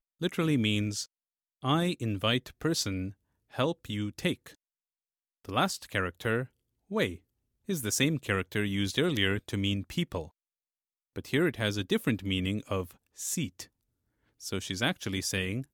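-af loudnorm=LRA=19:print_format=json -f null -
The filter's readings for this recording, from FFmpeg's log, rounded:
"input_i" : "-31.2",
"input_tp" : "-11.1",
"input_lra" : "3.9",
"input_thresh" : "-41.8",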